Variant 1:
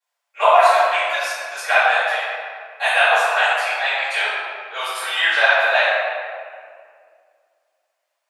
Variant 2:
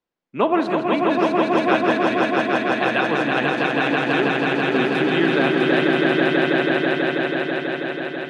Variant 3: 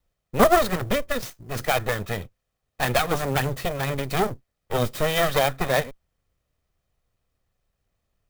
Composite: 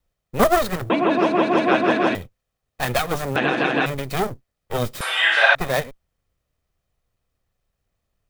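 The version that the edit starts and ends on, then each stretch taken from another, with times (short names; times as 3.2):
3
0.9–2.15 from 2
3.36–3.86 from 2
5.01–5.55 from 1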